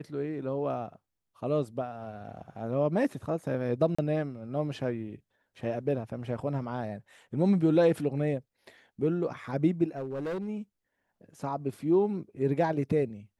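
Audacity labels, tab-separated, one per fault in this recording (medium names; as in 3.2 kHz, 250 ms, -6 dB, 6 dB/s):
3.950000	3.980000	dropout 35 ms
9.960000	10.490000	clipped -30.5 dBFS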